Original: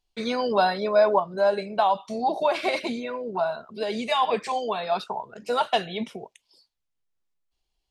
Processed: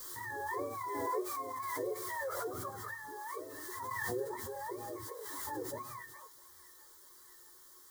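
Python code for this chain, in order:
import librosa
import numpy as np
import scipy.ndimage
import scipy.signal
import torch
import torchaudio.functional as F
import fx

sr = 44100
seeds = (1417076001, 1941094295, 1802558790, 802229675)

y = fx.octave_mirror(x, sr, pivot_hz=650.0)
y = fx.riaa(y, sr, side='recording')
y = fx.hum_notches(y, sr, base_hz=50, count=3)
y = fx.quant_dither(y, sr, seeds[0], bits=8, dither='triangular')
y = fx.fixed_phaser(y, sr, hz=680.0, stages=6)
y = fx.comb_fb(y, sr, f0_hz=360.0, decay_s=0.21, harmonics='odd', damping=0.0, mix_pct=80)
y = fx.echo_wet_highpass(y, sr, ms=651, feedback_pct=70, hz=1500.0, wet_db=-15.0)
y = fx.pre_swell(y, sr, db_per_s=20.0)
y = y * librosa.db_to_amplitude(2.5)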